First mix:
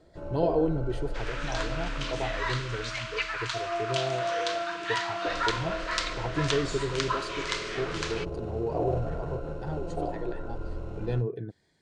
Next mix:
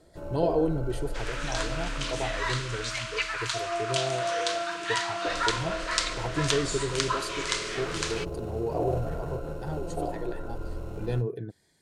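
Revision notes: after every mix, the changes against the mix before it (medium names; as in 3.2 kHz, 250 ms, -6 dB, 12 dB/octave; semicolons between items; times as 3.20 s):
master: remove distance through air 95 m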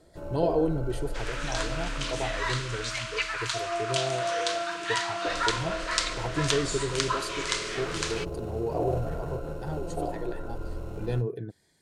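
no change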